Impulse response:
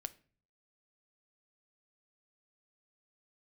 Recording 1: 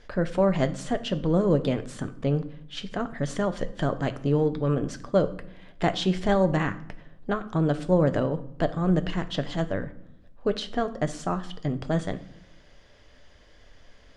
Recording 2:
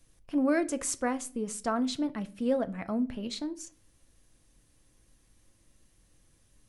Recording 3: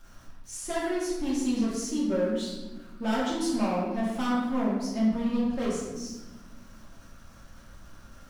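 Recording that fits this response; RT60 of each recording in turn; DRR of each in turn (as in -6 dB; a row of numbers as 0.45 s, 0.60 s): 2; no single decay rate, 0.45 s, 1.2 s; 9.5 dB, 11.5 dB, -8.0 dB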